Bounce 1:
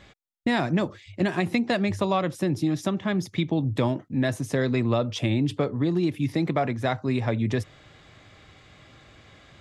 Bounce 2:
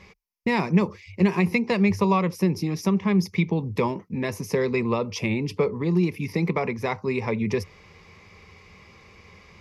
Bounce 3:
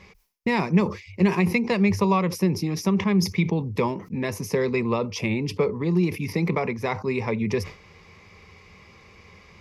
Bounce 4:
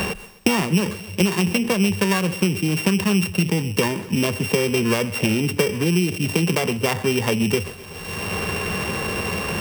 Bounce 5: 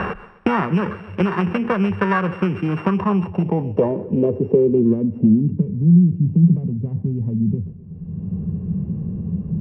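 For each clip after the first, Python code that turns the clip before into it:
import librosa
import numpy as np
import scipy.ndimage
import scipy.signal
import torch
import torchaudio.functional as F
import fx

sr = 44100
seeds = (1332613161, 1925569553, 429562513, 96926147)

y1 = fx.ripple_eq(x, sr, per_octave=0.83, db=13)
y2 = fx.sustainer(y1, sr, db_per_s=140.0)
y3 = np.r_[np.sort(y2[:len(y2) // 16 * 16].reshape(-1, 16), axis=1).ravel(), y2[len(y2) // 16 * 16:]]
y3 = fx.echo_feedback(y3, sr, ms=128, feedback_pct=41, wet_db=-21.0)
y3 = fx.band_squash(y3, sr, depth_pct=100)
y3 = y3 * librosa.db_to_amplitude(2.5)
y4 = fx.filter_sweep_lowpass(y3, sr, from_hz=1400.0, to_hz=170.0, start_s=2.66, end_s=5.72, q=3.2)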